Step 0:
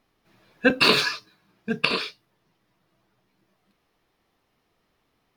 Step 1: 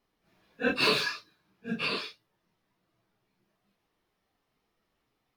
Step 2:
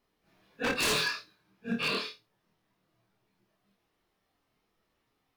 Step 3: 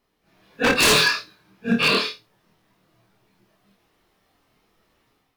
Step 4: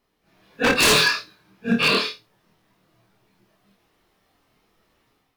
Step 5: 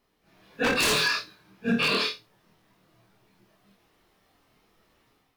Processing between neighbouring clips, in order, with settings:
random phases in long frames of 100 ms; level −7 dB
wave folding −23.5 dBFS; flutter between parallel walls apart 4.4 metres, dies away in 0.21 s
automatic gain control gain up to 7 dB; level +5 dB
no processing that can be heard
brickwall limiter −16 dBFS, peak gain reduction 8 dB

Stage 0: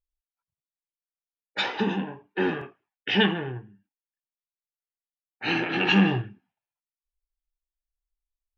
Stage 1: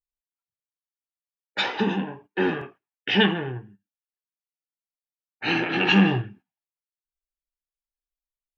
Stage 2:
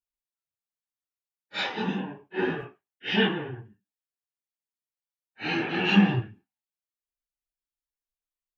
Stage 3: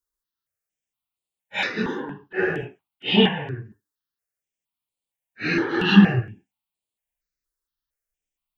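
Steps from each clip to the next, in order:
noise gate −50 dBFS, range −13 dB; level +2 dB
random phases in long frames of 100 ms; level −4 dB
step-sequenced phaser 4.3 Hz 700–5,700 Hz; level +8 dB

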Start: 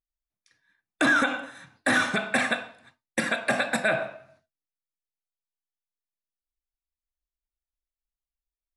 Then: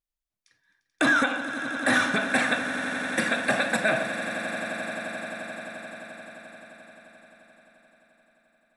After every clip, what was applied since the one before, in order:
echo that builds up and dies away 87 ms, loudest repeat 8, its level −15.5 dB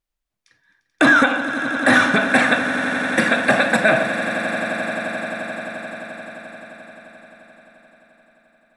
high-shelf EQ 4,200 Hz −7.5 dB
level +9 dB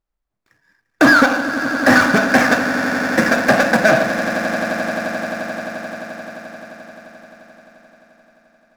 running median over 15 samples
level +4 dB

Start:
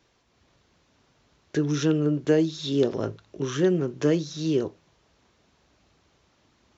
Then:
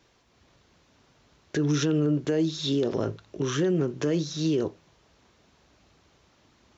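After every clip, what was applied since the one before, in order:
brickwall limiter −19.5 dBFS, peak gain reduction 10 dB
level +2.5 dB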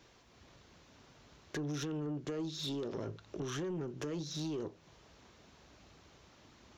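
downward compressor 3 to 1, threshold −38 dBFS, peak gain reduction 13 dB
soft clipping −33.5 dBFS, distortion −15 dB
level +1 dB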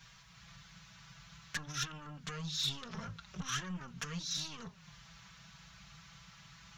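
drawn EQ curve 180 Hz 0 dB, 310 Hz −29 dB, 1,300 Hz 0 dB
flanger swept by the level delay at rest 6.4 ms, full sweep at −25.5 dBFS
level +10 dB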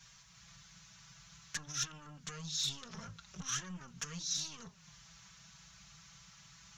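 parametric band 6,600 Hz +10 dB 0.87 octaves
level −4.5 dB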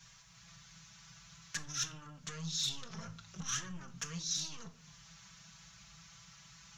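convolution reverb RT60 0.50 s, pre-delay 6 ms, DRR 9 dB

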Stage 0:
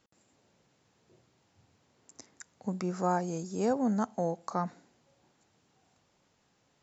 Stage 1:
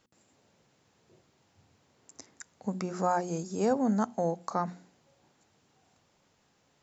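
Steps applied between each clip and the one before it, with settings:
mains-hum notches 60/120/180/240/300/360 Hz
level +2 dB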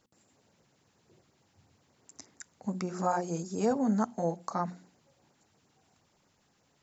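auto-filter notch sine 8.5 Hz 430–3,600 Hz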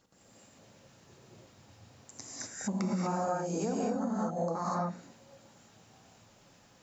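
reverb whose tail is shaped and stops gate 270 ms rising, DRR −7.5 dB
downward compressor 16 to 1, threshold −30 dBFS, peak gain reduction 16 dB
level +1.5 dB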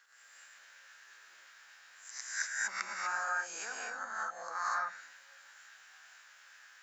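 peak hold with a rise ahead of every peak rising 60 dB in 0.41 s
high-pass with resonance 1,600 Hz, resonance Q 5.2

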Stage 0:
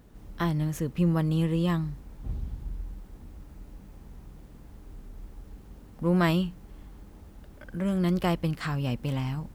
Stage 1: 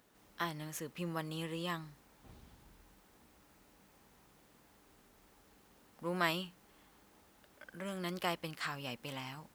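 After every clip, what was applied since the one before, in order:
high-pass filter 1,100 Hz 6 dB per octave
level −2 dB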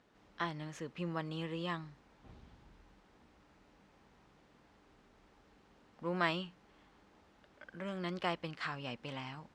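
high-frequency loss of the air 130 metres
level +1 dB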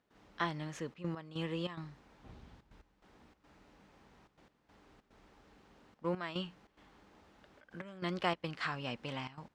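gate pattern ".xxxxxxxx.x..xxx" 144 BPM −12 dB
level +2.5 dB

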